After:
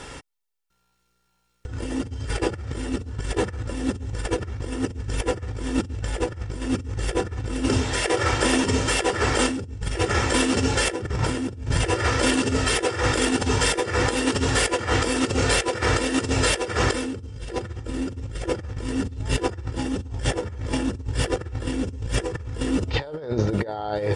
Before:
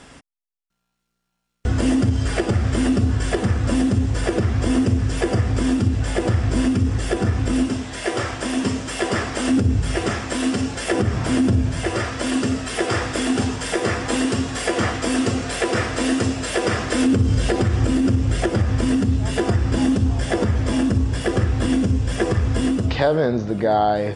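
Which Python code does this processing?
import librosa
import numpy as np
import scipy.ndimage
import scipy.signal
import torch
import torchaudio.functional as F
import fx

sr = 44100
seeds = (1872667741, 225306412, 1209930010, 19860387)

y = x + 0.52 * np.pad(x, (int(2.2 * sr / 1000.0), 0))[:len(x)]
y = fx.over_compress(y, sr, threshold_db=-24.0, ratio=-0.5)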